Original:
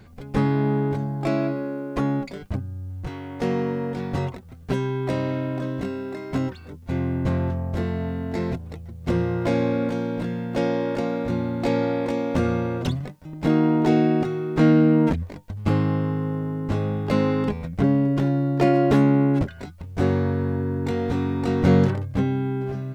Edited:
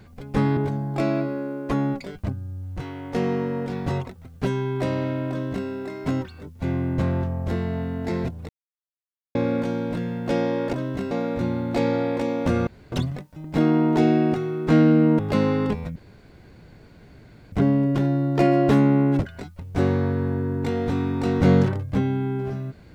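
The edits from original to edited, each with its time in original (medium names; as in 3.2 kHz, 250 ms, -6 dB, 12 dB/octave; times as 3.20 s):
0.57–0.84 s: delete
5.57–5.95 s: copy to 11.00 s
8.76–9.62 s: mute
12.56–12.81 s: room tone
15.08–16.97 s: delete
17.74 s: insert room tone 1.56 s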